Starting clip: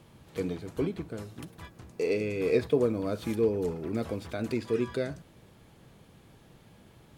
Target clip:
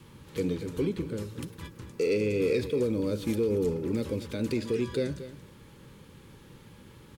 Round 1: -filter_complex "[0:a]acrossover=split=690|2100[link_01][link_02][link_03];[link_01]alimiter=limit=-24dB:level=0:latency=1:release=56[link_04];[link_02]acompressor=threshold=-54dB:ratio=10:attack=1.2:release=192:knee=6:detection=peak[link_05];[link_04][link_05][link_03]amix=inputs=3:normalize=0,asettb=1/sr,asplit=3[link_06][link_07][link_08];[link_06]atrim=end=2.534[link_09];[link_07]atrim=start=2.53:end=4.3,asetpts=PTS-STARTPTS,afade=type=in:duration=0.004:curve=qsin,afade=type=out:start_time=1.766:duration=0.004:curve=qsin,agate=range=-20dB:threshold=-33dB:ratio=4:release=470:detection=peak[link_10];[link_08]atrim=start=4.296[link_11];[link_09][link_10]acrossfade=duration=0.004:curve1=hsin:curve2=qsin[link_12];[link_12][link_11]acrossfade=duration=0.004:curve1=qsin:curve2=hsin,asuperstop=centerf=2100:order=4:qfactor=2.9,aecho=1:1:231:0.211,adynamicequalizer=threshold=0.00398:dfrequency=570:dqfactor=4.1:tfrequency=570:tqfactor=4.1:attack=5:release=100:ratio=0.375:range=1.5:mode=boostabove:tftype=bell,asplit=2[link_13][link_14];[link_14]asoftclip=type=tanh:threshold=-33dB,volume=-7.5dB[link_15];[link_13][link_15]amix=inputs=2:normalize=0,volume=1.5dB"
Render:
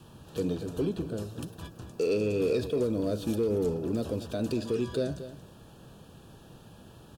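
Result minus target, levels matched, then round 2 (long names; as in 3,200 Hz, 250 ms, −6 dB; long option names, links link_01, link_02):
soft clipping: distortion +8 dB; 2,000 Hz band −3.5 dB
-filter_complex "[0:a]acrossover=split=690|2100[link_01][link_02][link_03];[link_01]alimiter=limit=-24dB:level=0:latency=1:release=56[link_04];[link_02]acompressor=threshold=-54dB:ratio=10:attack=1.2:release=192:knee=6:detection=peak[link_05];[link_04][link_05][link_03]amix=inputs=3:normalize=0,asettb=1/sr,asplit=3[link_06][link_07][link_08];[link_06]atrim=end=2.534[link_09];[link_07]atrim=start=2.53:end=4.3,asetpts=PTS-STARTPTS,afade=type=in:duration=0.004:curve=qsin,afade=type=out:start_time=1.766:duration=0.004:curve=qsin,agate=range=-20dB:threshold=-33dB:ratio=4:release=470:detection=peak[link_10];[link_08]atrim=start=4.296[link_11];[link_09][link_10]acrossfade=duration=0.004:curve1=hsin:curve2=qsin[link_12];[link_12][link_11]acrossfade=duration=0.004:curve1=qsin:curve2=hsin,asuperstop=centerf=690:order=4:qfactor=2.9,aecho=1:1:231:0.211,adynamicequalizer=threshold=0.00398:dfrequency=570:dqfactor=4.1:tfrequency=570:tqfactor=4.1:attack=5:release=100:ratio=0.375:range=1.5:mode=boostabove:tftype=bell,asplit=2[link_13][link_14];[link_14]asoftclip=type=tanh:threshold=-26.5dB,volume=-7.5dB[link_15];[link_13][link_15]amix=inputs=2:normalize=0,volume=1.5dB"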